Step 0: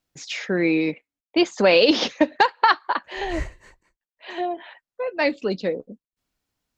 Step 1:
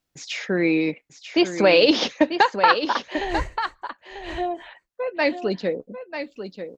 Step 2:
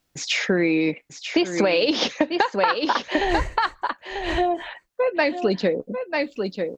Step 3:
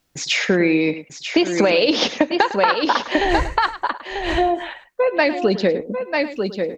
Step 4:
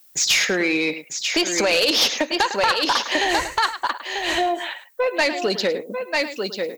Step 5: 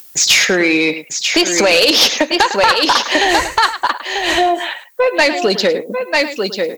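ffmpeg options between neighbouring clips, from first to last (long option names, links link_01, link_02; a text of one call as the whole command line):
ffmpeg -i in.wav -af "aecho=1:1:942:0.335" out.wav
ffmpeg -i in.wav -filter_complex "[0:a]asplit=2[link_01][link_02];[link_02]alimiter=limit=-11.5dB:level=0:latency=1:release=318,volume=3dB[link_03];[link_01][link_03]amix=inputs=2:normalize=0,acompressor=threshold=-17dB:ratio=6" out.wav
ffmpeg -i in.wav -filter_complex "[0:a]asplit=2[link_01][link_02];[link_02]adelay=105,volume=-14dB,highshelf=frequency=4000:gain=-2.36[link_03];[link_01][link_03]amix=inputs=2:normalize=0,volume=3.5dB" out.wav
ffmpeg -i in.wav -af "aemphasis=mode=production:type=riaa,asoftclip=type=tanh:threshold=-12dB" out.wav
ffmpeg -i in.wav -af "acompressor=mode=upward:threshold=-39dB:ratio=2.5,volume=7.5dB" -ar 48000 -c:a libvorbis -b:a 96k out.ogg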